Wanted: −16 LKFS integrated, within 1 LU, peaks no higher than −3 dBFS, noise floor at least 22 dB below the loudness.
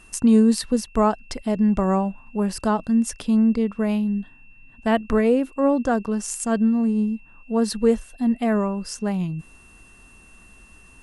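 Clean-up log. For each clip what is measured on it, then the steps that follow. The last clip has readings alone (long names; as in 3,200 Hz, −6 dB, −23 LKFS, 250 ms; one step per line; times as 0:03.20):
interfering tone 2,700 Hz; level of the tone −51 dBFS; integrated loudness −22.0 LKFS; sample peak −7.0 dBFS; target loudness −16.0 LKFS
→ notch filter 2,700 Hz, Q 30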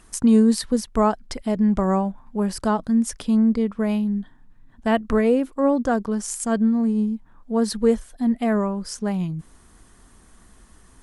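interfering tone none found; integrated loudness −22.0 LKFS; sample peak −7.0 dBFS; target loudness −16.0 LKFS
→ level +6 dB
brickwall limiter −3 dBFS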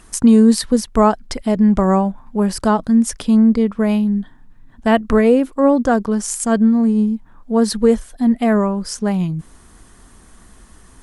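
integrated loudness −16.0 LKFS; sample peak −3.0 dBFS; background noise floor −47 dBFS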